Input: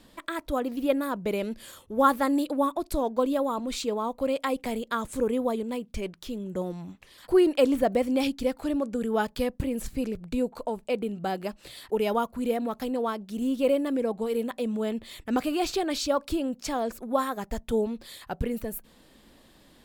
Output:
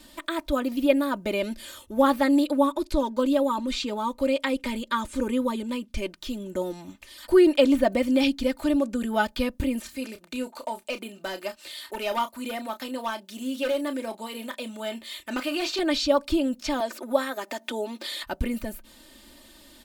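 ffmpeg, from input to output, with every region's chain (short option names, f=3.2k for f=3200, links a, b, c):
-filter_complex "[0:a]asettb=1/sr,asplit=3[a][b][c];[a]atrim=end=2.564[d];[b]atrim=start=2.56:end=5.97,asetpts=PTS-STARTPTS,afade=t=in:d=0.004:c=qsin,afade=t=out:st=3.406:d=0.004:c=qsin,asuperstop=centerf=700:order=4:qfactor=5.2,highshelf=f=11k:g=-8.5[e];[c]atrim=start=5.966[f];[d][e]acrossfade=d=0.004:c1=hsin:c2=qsin[g];[g][f]acrossfade=d=0.004:c1=qsin:c2=hsin,asettb=1/sr,asplit=3[h][i][j];[h]atrim=end=9.804[k];[i]atrim=start=9.8:end=15.79,asetpts=PTS-STARTPTS,afade=t=in:d=0.004:c=qsin,afade=t=out:st=5.986:d=0.004:c=qsin,highpass=f=630:p=1,volume=25dB,asoftclip=hard,volume=-25dB,asplit=2[l][m];[m]adelay=31,volume=-11dB[n];[l][n]amix=inputs=2:normalize=0,atrim=end_sample=264159[o];[j]atrim=start=15.786[p];[k][o]acrossfade=d=0.004:c1=hsin:c2=qsin[q];[q][p]acrossfade=d=0.004:c1=qsin:c2=hsin,asettb=1/sr,asplit=3[r][s][t];[r]atrim=end=16.804[u];[s]atrim=start=16.8:end=18.23,asetpts=PTS-STARTPTS,afade=t=in:d=0.004:c=qsin,afade=t=out:st=1.426:d=0.004:c=qsin,highpass=f=290:w=0.5412,highpass=f=290:w=1.3066,acompressor=mode=upward:threshold=-29dB:ratio=2.5:attack=3.2:release=140:knee=2.83:detection=peak[v];[t]atrim=start=18.226[w];[u][v]acrossfade=d=0.004:c1=hsin:c2=qsin[x];[x][w]acrossfade=d=0.004:c1=qsin:c2=hsin,acrossover=split=4600[y][z];[z]acompressor=threshold=-55dB:ratio=4:attack=1:release=60[aa];[y][aa]amix=inputs=2:normalize=0,highshelf=f=2.5k:g=9,aecho=1:1:3.3:0.76"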